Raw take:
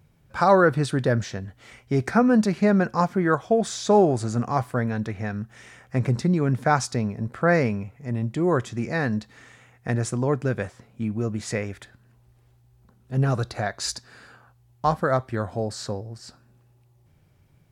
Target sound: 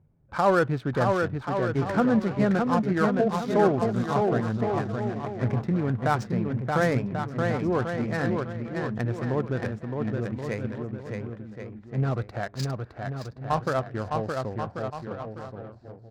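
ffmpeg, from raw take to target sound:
-af "aecho=1:1:680|1190|1572|1859|2075:0.631|0.398|0.251|0.158|0.1,adynamicsmooth=sensitivity=3.5:basefreq=1000,atempo=1.1,volume=0.631"

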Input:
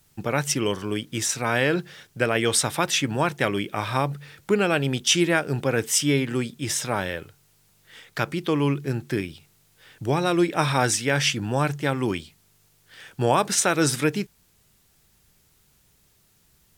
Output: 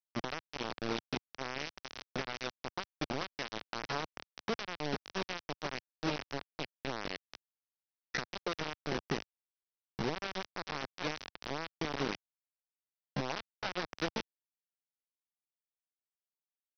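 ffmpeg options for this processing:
-filter_complex "[0:a]acompressor=threshold=0.0251:ratio=16,asplit=2[s0][s1];[s1]aecho=0:1:440:0.422[s2];[s0][s2]amix=inputs=2:normalize=0,adynamicequalizer=threshold=0.00158:dfrequency=180:dqfactor=6.3:tfrequency=180:tqfactor=6.3:attack=5:release=100:ratio=0.375:range=2:mode=boostabove:tftype=bell,lowpass=2300,aphaser=in_gain=1:out_gain=1:delay=2.1:decay=0.3:speed=1:type=sinusoidal,aresample=11025,acrusher=bits=4:mix=0:aa=0.000001,aresample=44100,equalizer=f=86:w=1.4:g=-9,asetrate=48091,aresample=44100,atempo=0.917004,volume=0.794"

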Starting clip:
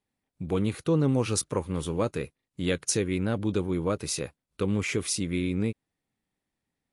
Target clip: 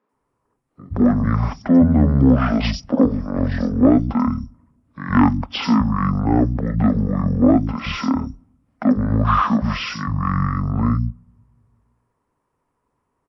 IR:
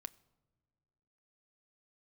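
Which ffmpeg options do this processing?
-filter_complex "[0:a]equalizer=f=500:t=o:w=1:g=9,equalizer=f=1000:t=o:w=1:g=6,equalizer=f=2000:t=o:w=1:g=9,equalizer=f=8000:t=o:w=1:g=-10,acontrast=84,asetrate=22976,aresample=44100,acrossover=split=180|4700[s0][s1][s2];[s2]adelay=90[s3];[s0]adelay=130[s4];[s4][s1][s3]amix=inputs=3:normalize=0,asplit=2[s5][s6];[1:a]atrim=start_sample=2205[s7];[s6][s7]afir=irnorm=-1:irlink=0,volume=0.531[s8];[s5][s8]amix=inputs=2:normalize=0,volume=0.794"

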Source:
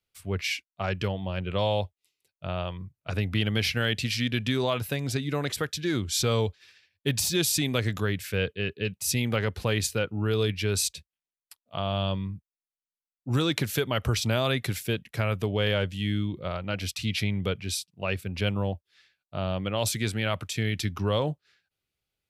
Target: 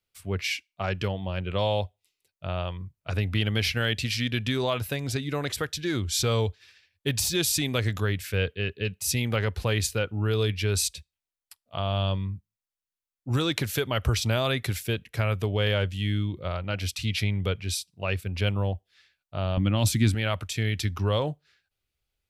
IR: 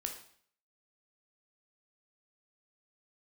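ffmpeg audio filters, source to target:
-filter_complex "[0:a]asettb=1/sr,asplit=3[s0][s1][s2];[s0]atrim=end=19.574[s3];[s1]atrim=start=19.57:end=20.15,asetpts=PTS-STARTPTS,afade=t=in:d=0.004:c=qsin,afade=t=out:st=0.576:d=0.004:c=qsin,lowshelf=f=350:t=q:w=3:g=6.5[s4];[s2]atrim=start=20.146[s5];[s3][s4]acrossfade=d=0.004:c1=hsin:c2=qsin[s6];[s6][s5]acrossfade=d=0.004:c1=qsin:c2=hsin,asplit=2[s7][s8];[1:a]atrim=start_sample=2205,asetrate=83790,aresample=44100[s9];[s8][s9]afir=irnorm=-1:irlink=0,volume=0.119[s10];[s7][s10]amix=inputs=2:normalize=0,asubboost=boost=3.5:cutoff=77"

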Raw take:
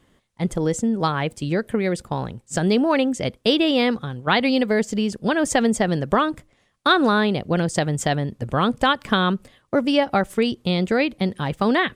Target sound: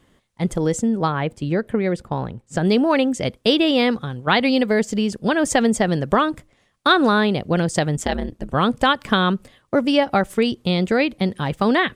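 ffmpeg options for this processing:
-filter_complex "[0:a]asettb=1/sr,asplit=3[s0][s1][s2];[s0]atrim=end=0.994[s3];[s1]atrim=start=0.99:end=2.65,asetpts=PTS-STARTPTS,afade=t=in:d=0.004:c=qsin,afade=t=out:st=1.656:d=0.004:c=qsin,highshelf=f=3600:g=-11.5[s4];[s2]atrim=start=2.646[s5];[s3][s4]acrossfade=d=0.004:c1=hsin:c2=qsin[s6];[s6][s5]acrossfade=d=0.004:c1=qsin:c2=hsin,asplit=3[s7][s8][s9];[s7]afade=t=out:st=7.96:d=0.02[s10];[s8]aeval=exprs='val(0)*sin(2*PI*88*n/s)':c=same,afade=t=in:st=7.96:d=0.02,afade=t=out:st=8.53:d=0.02[s11];[s9]afade=t=in:st=8.53:d=0.02[s12];[s10][s11][s12]amix=inputs=3:normalize=0,volume=1.19"

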